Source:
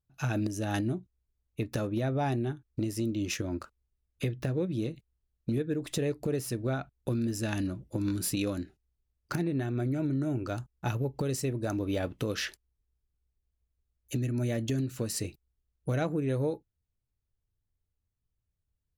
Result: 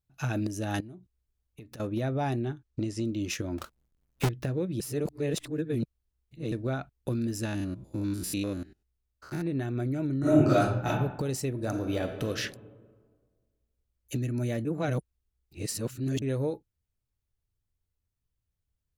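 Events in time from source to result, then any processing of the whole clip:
0.8–1.8 compressor 5:1, threshold -44 dBFS
2.4–3.07 LPF 8300 Hz 24 dB/oct
3.58–4.29 half-waves squared off
4.8–6.52 reverse
7.45–9.46 stepped spectrum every 0.1 s
10.19–10.86 reverb throw, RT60 0.85 s, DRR -11.5 dB
11.49–12.27 reverb throw, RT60 1.6 s, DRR 5.5 dB
14.65–16.22 reverse

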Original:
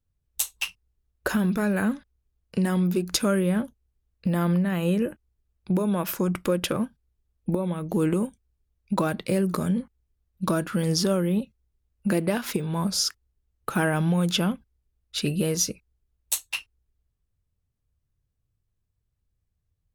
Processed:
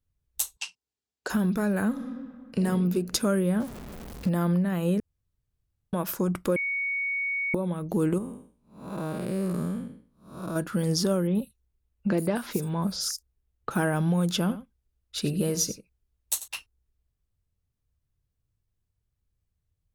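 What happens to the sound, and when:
0.57–1.3 speaker cabinet 320–8200 Hz, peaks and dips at 350 Hz -6 dB, 570 Hz -9 dB, 1200 Hz -8 dB, 1900 Hz -4 dB, 4700 Hz +4 dB, 7500 Hz +4 dB
1.89–2.58 reverb throw, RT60 1.9 s, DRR -0.5 dB
3.6–4.29 zero-crossing step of -33.5 dBFS
5–5.93 room tone
6.56–7.54 bleep 2230 Hz -19 dBFS
8.18–10.56 time blur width 0.275 s
11.27–13.71 bands offset in time lows, highs 80 ms, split 5500 Hz
14.39–16.48 echo 91 ms -14 dB
whole clip: dynamic EQ 2500 Hz, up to -6 dB, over -46 dBFS, Q 1.3; gain -1.5 dB

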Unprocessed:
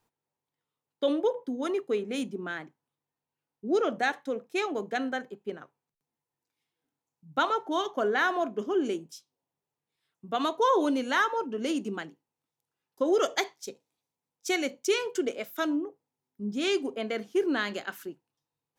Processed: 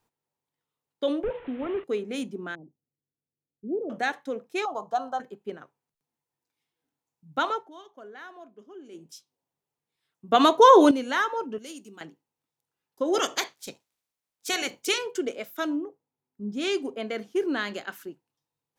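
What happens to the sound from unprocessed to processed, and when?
1.23–1.84 delta modulation 16 kbps, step -40.5 dBFS
2.55–3.9 Gaussian blur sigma 17 samples
4.65–5.2 EQ curve 120 Hz 0 dB, 220 Hz -10 dB, 400 Hz -12 dB, 680 Hz +7 dB, 1200 Hz +9 dB, 2000 Hz -26 dB, 3000 Hz -8 dB, 5500 Hz 0 dB, 9600 Hz -5 dB
7.51–9.11 dip -18 dB, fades 0.20 s
10.32–10.91 gain +10 dB
11.58–12.01 pre-emphasis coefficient 0.8
13.13–14.97 spectral limiter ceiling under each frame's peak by 17 dB
15.53–18.07 mismatched tape noise reduction decoder only

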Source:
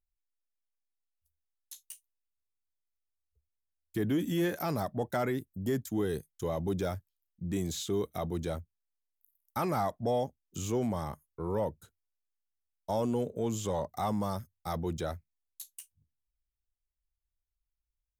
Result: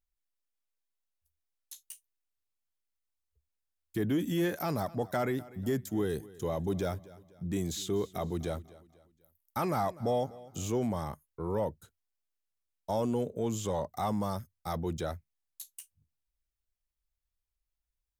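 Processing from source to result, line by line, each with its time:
4.61–10.68 feedback echo 0.247 s, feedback 41%, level -20 dB

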